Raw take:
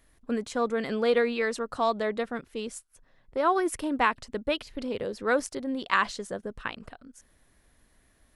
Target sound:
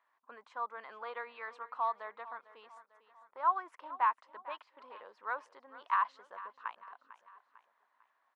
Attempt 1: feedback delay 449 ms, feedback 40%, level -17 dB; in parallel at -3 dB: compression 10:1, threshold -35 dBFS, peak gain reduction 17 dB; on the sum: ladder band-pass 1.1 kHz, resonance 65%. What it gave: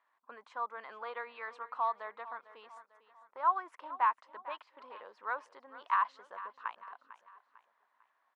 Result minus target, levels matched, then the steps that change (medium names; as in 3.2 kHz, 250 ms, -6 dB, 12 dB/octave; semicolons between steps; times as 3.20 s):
compression: peak gain reduction -10.5 dB
change: compression 10:1, threshold -46.5 dBFS, peak gain reduction 27.5 dB